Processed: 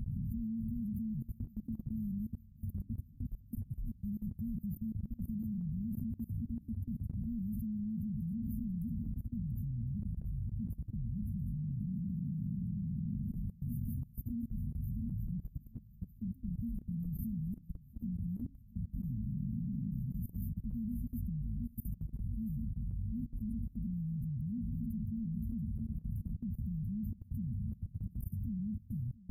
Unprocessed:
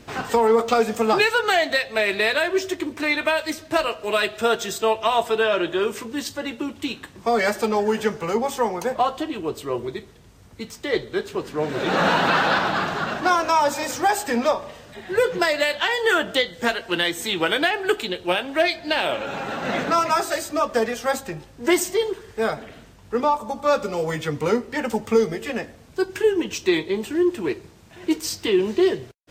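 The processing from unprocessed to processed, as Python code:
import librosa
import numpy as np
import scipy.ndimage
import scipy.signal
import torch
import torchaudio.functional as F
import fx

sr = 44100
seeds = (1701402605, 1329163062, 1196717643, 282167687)

p1 = fx.curve_eq(x, sr, hz=(120.0, 190.0, 360.0, 550.0, 970.0, 1400.0, 2500.0, 4500.0, 9100.0), db=(0, -3, -13, -22, -18, -22, -26, -3, -21))
p2 = fx.over_compress(p1, sr, threshold_db=-42.0, ratio=-1.0)
p3 = p1 + F.gain(torch.from_numpy(p2), 0.0).numpy()
p4 = fx.brickwall_bandstop(p3, sr, low_hz=250.0, high_hz=9600.0)
p5 = fx.low_shelf(p4, sr, hz=86.0, db=10.0)
p6 = p5 + fx.echo_feedback(p5, sr, ms=685, feedback_pct=20, wet_db=-12.0, dry=0)
p7 = fx.level_steps(p6, sr, step_db=20)
y = F.gain(torch.from_numpy(p7), 3.0).numpy()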